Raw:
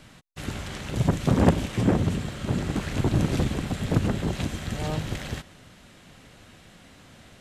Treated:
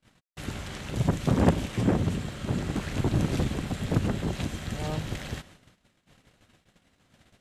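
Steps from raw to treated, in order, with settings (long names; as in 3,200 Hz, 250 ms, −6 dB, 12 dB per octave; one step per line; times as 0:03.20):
noise gate −48 dBFS, range −29 dB
level −2.5 dB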